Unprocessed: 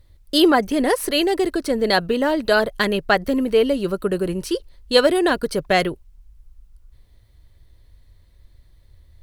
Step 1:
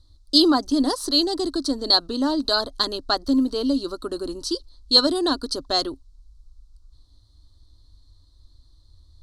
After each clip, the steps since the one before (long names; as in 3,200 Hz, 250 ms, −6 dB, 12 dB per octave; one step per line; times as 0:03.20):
drawn EQ curve 100 Hz 0 dB, 190 Hz −19 dB, 270 Hz +6 dB, 450 Hz −10 dB, 1,200 Hz +1 dB, 2,300 Hz −24 dB, 4,100 Hz +11 dB, 6,200 Hz +5 dB, 9,200 Hz 0 dB, 15,000 Hz −17 dB
level −2 dB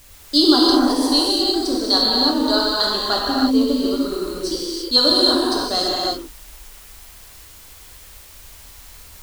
in parallel at −10 dB: bit-depth reduction 6 bits, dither triangular
on the sum: reverb whose tail is shaped and stops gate 370 ms flat, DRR −5.5 dB
level −4 dB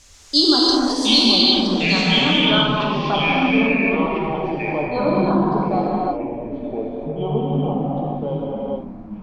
low-pass filter sweep 6,500 Hz → 950 Hz, 0:01.09–0:02.98
delay with pitch and tempo change per echo 603 ms, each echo −5 semitones, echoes 2
level −3 dB